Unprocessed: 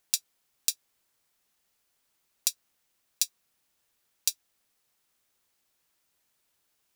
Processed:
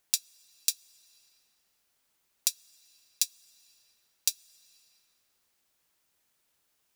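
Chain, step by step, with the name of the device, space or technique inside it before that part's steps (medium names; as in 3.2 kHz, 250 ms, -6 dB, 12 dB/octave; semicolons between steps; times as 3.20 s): compressed reverb return (on a send at -13 dB: reverberation RT60 2.5 s, pre-delay 25 ms + compression, threshold -44 dBFS, peak gain reduction 13.5 dB)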